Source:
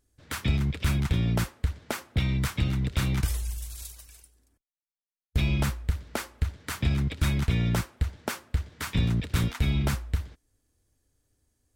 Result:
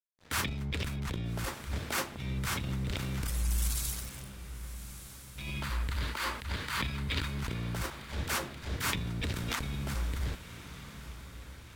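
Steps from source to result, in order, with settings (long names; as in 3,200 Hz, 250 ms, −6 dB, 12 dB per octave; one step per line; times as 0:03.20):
0:04.34–0:07.27: gain on a spectral selection 870–5,000 Hz +8 dB
compressor whose output falls as the input rises −32 dBFS, ratio −1
transient designer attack −8 dB, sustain +9 dB
0:07.90–0:08.88: all-pass dispersion lows, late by 83 ms, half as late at 370 Hz
dead-zone distortion −48 dBFS
feedback delay with all-pass diffusion 1,257 ms, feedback 48%, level −12.5 dB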